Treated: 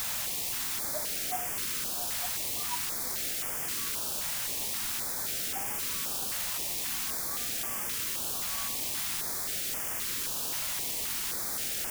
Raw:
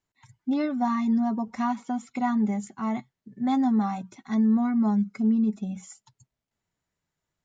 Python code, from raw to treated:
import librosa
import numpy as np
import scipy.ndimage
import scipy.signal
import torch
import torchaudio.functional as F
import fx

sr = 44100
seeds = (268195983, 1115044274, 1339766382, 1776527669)

y = fx.low_shelf(x, sr, hz=270.0, db=9.0)
y = fx.stretch_vocoder_free(y, sr, factor=1.6)
y = fx.level_steps(y, sr, step_db=11)
y = fx.stiff_resonator(y, sr, f0_hz=73.0, decay_s=0.39, stiffness=0.008)
y = fx.leveller(y, sr, passes=3)
y = fx.auto_wah(y, sr, base_hz=330.0, top_hz=1200.0, q=18.0, full_db=-24.0, direction='up')
y = fx.quant_dither(y, sr, seeds[0], bits=6, dither='triangular')
y = fx.filter_held_notch(y, sr, hz=3.8, low_hz=370.0, high_hz=4000.0)
y = y * librosa.db_to_amplitude(3.0)